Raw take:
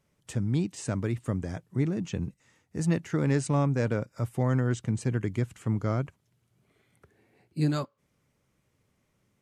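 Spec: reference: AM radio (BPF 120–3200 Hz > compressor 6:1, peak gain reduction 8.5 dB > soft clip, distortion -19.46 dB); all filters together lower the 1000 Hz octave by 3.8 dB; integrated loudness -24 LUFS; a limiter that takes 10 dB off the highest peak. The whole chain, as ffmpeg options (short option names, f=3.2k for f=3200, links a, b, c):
-af "equalizer=f=1k:t=o:g=-5,alimiter=level_in=1dB:limit=-24dB:level=0:latency=1,volume=-1dB,highpass=120,lowpass=3.2k,acompressor=threshold=-36dB:ratio=6,asoftclip=threshold=-32dB,volume=19.5dB"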